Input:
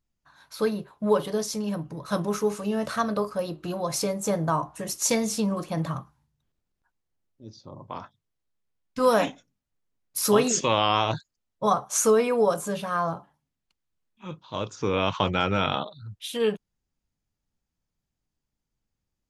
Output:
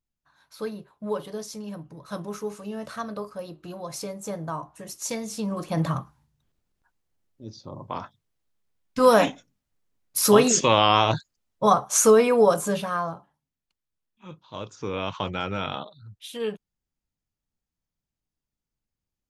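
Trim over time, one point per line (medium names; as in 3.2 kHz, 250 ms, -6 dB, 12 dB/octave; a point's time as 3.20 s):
5.27 s -7 dB
5.82 s +4 dB
12.76 s +4 dB
13.16 s -5 dB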